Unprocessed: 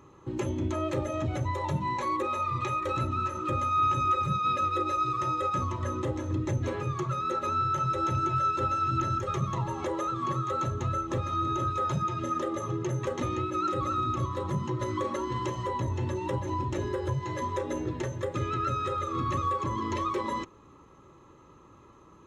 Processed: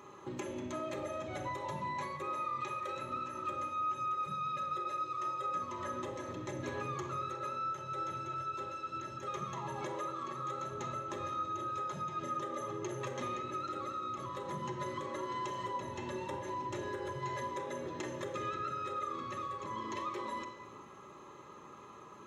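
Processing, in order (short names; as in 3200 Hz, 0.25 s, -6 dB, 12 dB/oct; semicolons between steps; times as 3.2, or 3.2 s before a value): HPF 510 Hz 6 dB/oct; compressor 6:1, threshold -43 dBFS, peak gain reduction 18.5 dB; shoebox room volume 1800 m³, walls mixed, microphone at 1.3 m; gain +4 dB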